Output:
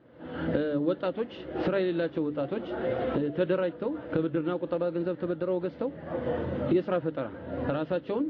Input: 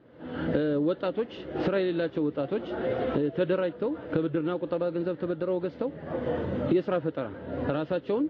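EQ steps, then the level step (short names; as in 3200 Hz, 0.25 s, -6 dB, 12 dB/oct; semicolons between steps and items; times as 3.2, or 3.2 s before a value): air absorption 72 m; notches 50/100/150/200/250/300 Hz; notch 420 Hz, Q 12; 0.0 dB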